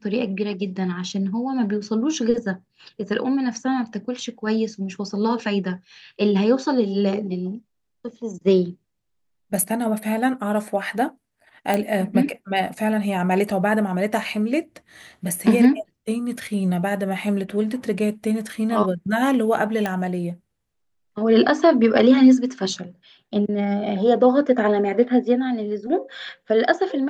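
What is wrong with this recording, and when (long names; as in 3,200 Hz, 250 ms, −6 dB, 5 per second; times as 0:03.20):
0:11.74: click
0:19.86: click −11 dBFS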